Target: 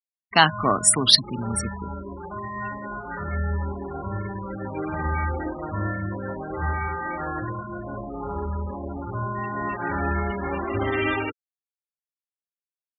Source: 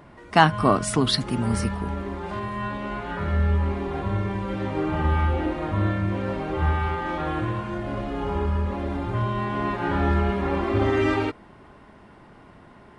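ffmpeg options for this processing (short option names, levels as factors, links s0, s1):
-af "highpass=f=47:w=0.5412,highpass=f=47:w=1.3066,afftfilt=real='re*gte(hypot(re,im),0.0501)':imag='im*gte(hypot(re,im),0.0501)':win_size=1024:overlap=0.75,crystalizer=i=8.5:c=0,volume=0.562"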